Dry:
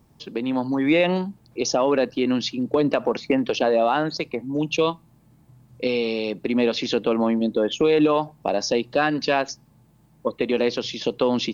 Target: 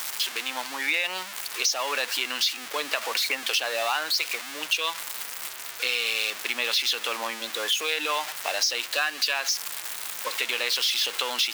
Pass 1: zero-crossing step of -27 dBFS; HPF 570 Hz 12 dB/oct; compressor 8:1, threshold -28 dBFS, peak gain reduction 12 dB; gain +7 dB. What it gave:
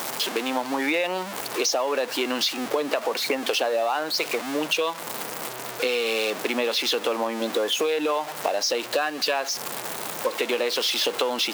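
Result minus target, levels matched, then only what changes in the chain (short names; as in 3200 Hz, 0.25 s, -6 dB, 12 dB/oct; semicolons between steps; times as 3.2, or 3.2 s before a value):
500 Hz band +10.0 dB
change: HPF 1700 Hz 12 dB/oct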